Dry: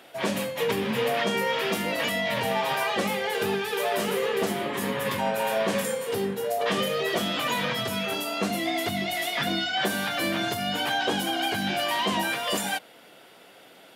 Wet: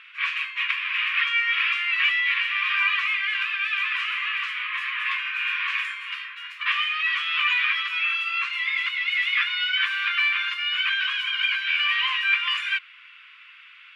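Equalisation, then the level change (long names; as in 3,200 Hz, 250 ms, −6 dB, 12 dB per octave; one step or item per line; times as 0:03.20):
linear-phase brick-wall high-pass 1,000 Hz
low-pass with resonance 2,500 Hz, resonance Q 4.5
0.0 dB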